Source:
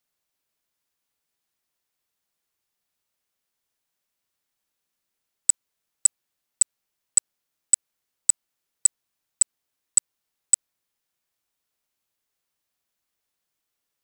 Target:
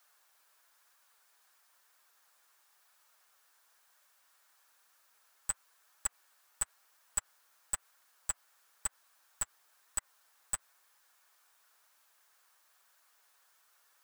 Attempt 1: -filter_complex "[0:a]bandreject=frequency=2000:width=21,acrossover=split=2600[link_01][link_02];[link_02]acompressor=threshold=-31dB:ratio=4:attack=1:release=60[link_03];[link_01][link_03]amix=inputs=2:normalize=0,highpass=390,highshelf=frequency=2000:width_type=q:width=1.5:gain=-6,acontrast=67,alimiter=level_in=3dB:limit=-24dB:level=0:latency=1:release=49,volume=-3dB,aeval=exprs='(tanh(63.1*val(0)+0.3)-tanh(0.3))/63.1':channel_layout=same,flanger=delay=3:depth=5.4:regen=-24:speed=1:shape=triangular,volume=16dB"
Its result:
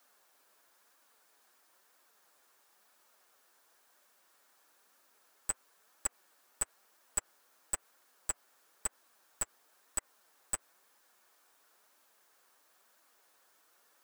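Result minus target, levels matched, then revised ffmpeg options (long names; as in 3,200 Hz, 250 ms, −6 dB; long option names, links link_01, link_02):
500 Hz band +6.0 dB
-filter_complex "[0:a]bandreject=frequency=2000:width=21,acrossover=split=2600[link_01][link_02];[link_02]acompressor=threshold=-31dB:ratio=4:attack=1:release=60[link_03];[link_01][link_03]amix=inputs=2:normalize=0,highpass=880,highshelf=frequency=2000:width_type=q:width=1.5:gain=-6,acontrast=67,alimiter=level_in=3dB:limit=-24dB:level=0:latency=1:release=49,volume=-3dB,aeval=exprs='(tanh(63.1*val(0)+0.3)-tanh(0.3))/63.1':channel_layout=same,flanger=delay=3:depth=5.4:regen=-24:speed=1:shape=triangular,volume=16dB"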